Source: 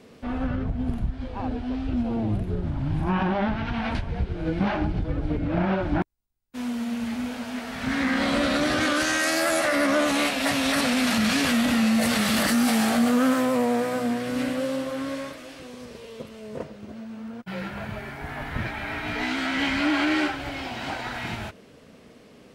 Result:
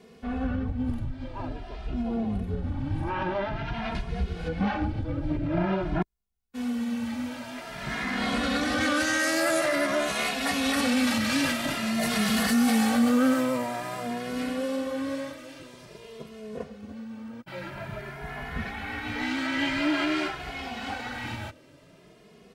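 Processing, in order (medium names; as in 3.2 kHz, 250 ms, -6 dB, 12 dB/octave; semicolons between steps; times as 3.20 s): 3.99–4.47 s: treble shelf 4.4 kHz -> 2.4 kHz +11.5 dB; endless flanger 2.4 ms +0.49 Hz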